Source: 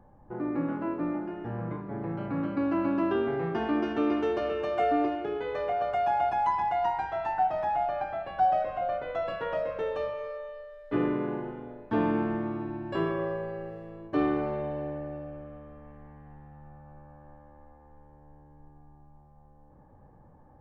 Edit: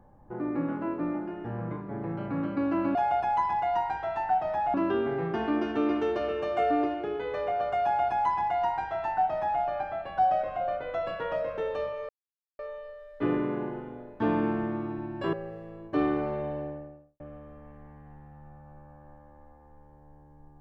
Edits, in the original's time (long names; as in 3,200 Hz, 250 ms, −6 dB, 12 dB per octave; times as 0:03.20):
0:06.04–0:07.83: duplicate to 0:02.95
0:10.30: splice in silence 0.50 s
0:13.04–0:13.53: remove
0:14.69–0:15.40: fade out and dull